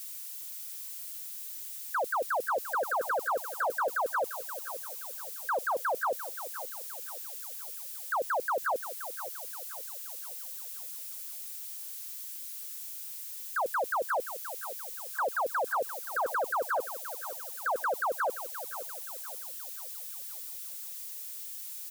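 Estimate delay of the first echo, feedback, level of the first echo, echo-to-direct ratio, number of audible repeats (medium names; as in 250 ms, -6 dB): 525 ms, 45%, -12.0 dB, -11.0 dB, 4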